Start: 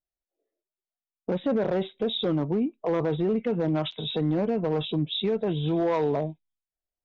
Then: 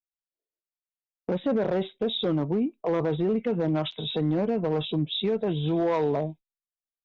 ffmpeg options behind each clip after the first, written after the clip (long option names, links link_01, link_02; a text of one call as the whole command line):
ffmpeg -i in.wav -af "agate=range=-17dB:threshold=-43dB:ratio=16:detection=peak" out.wav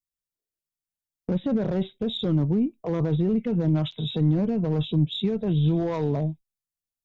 ffmpeg -i in.wav -af "bass=frequency=250:gain=15,treble=frequency=4000:gain=8,aeval=exprs='0.422*(cos(1*acos(clip(val(0)/0.422,-1,1)))-cos(1*PI/2))+0.00841*(cos(4*acos(clip(val(0)/0.422,-1,1)))-cos(4*PI/2))':channel_layout=same,volume=-5dB" out.wav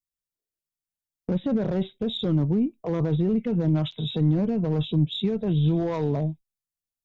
ffmpeg -i in.wav -af anull out.wav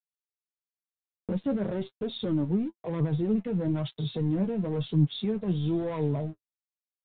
ffmpeg -i in.wav -af "aresample=8000,aeval=exprs='sgn(val(0))*max(abs(val(0))-0.00376,0)':channel_layout=same,aresample=44100,flanger=delay=6.6:depth=4.4:regen=34:speed=1:shape=triangular" out.wav